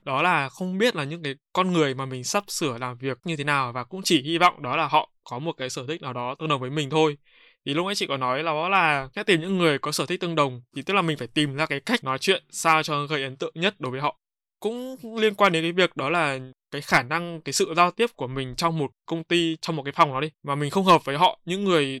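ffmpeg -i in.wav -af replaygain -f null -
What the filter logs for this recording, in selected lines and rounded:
track_gain = +2.4 dB
track_peak = 0.351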